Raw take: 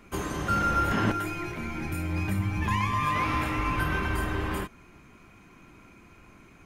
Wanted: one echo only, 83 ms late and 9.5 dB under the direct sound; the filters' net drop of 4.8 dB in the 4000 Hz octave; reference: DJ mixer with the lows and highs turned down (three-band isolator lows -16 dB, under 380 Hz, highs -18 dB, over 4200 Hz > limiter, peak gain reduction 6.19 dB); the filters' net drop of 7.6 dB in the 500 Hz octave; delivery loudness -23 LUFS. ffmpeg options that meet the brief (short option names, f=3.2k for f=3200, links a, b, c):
-filter_complex "[0:a]acrossover=split=380 4200:gain=0.158 1 0.126[a][b][c];[a][b][c]amix=inputs=3:normalize=0,equalizer=f=500:t=o:g=-6,equalizer=f=4k:t=o:g=-3.5,aecho=1:1:83:0.335,volume=10.5dB,alimiter=limit=-14dB:level=0:latency=1"